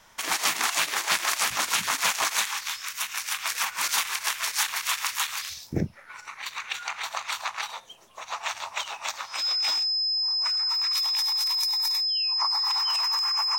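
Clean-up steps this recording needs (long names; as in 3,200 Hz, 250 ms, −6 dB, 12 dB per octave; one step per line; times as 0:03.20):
notch filter 5,100 Hz, Q 30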